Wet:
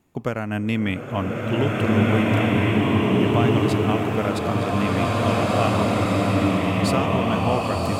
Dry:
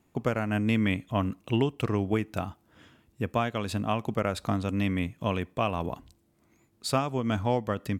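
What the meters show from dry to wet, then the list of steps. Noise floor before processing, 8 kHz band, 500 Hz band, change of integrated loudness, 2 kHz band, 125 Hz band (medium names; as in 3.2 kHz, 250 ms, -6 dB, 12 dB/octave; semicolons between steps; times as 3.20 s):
-68 dBFS, +6.5 dB, +9.0 dB, +8.5 dB, +9.5 dB, +9.0 dB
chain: swelling reverb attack 1900 ms, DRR -7 dB; trim +2 dB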